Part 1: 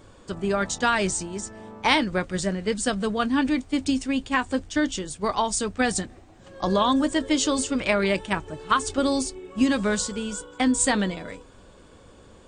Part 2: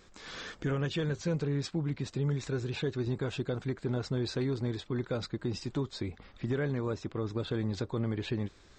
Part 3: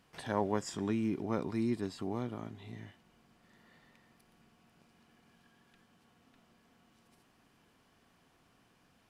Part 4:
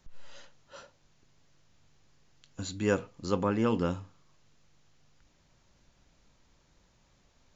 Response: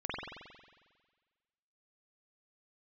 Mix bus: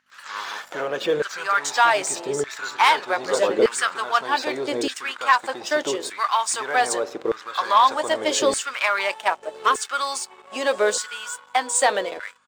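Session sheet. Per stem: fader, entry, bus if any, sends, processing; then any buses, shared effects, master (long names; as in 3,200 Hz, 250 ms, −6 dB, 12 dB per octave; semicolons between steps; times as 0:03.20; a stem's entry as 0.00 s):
−4.5 dB, 0.95 s, no send, bass and treble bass −11 dB, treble −1 dB
0.0 dB, 0.10 s, send −17 dB, no processing
−6.0 dB, 0.00 s, no send, lower of the sound and its delayed copy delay 0.67 ms; automatic ducking −9 dB, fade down 0.90 s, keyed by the fourth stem
+2.5 dB, 0.00 s, send −21 dB, high-shelf EQ 4,000 Hz −11.5 dB; downward compressor, threshold −32 dBFS, peak gain reduction 10 dB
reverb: on, RT60 1.5 s, pre-delay 45 ms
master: leveller curve on the samples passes 2; mains hum 50 Hz, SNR 17 dB; auto-filter high-pass saw down 0.82 Hz 420–1,600 Hz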